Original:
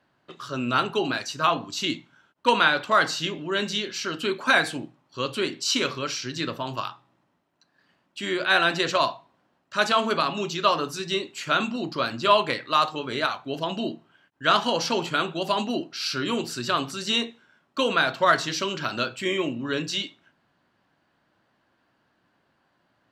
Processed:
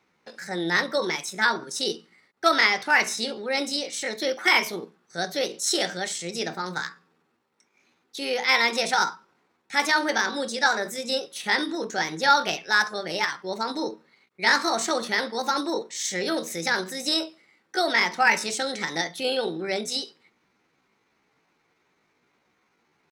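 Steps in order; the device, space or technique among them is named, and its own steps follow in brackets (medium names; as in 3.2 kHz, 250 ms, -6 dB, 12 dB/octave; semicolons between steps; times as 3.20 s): chipmunk voice (pitch shift +5.5 st)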